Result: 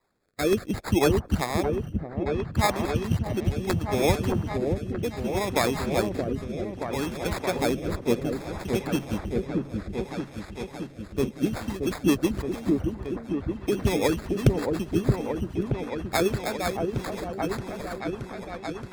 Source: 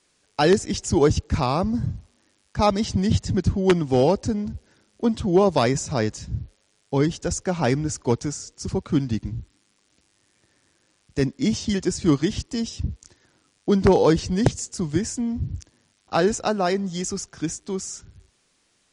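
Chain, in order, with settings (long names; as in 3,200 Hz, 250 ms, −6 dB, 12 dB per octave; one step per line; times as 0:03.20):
decimation without filtering 15×
harmonic and percussive parts rebalanced harmonic −13 dB
on a send: echo whose low-pass opens from repeat to repeat 624 ms, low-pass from 750 Hz, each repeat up 1 octave, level −3 dB
on the sum: rotating-speaker cabinet horn 0.65 Hz, later 8 Hz, at 0:11.41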